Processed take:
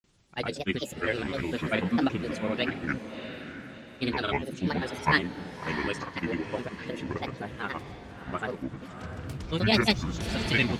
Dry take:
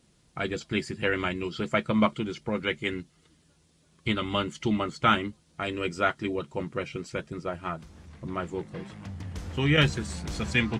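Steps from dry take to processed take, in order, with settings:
granular cloud, pitch spread up and down by 7 semitones
on a send: feedback delay with all-pass diffusion 666 ms, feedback 41%, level −9.5 dB

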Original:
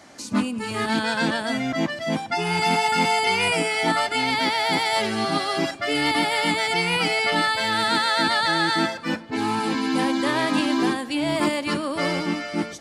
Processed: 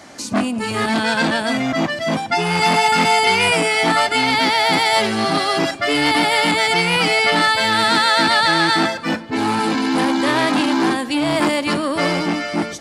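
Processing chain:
saturating transformer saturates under 1,300 Hz
level +7 dB

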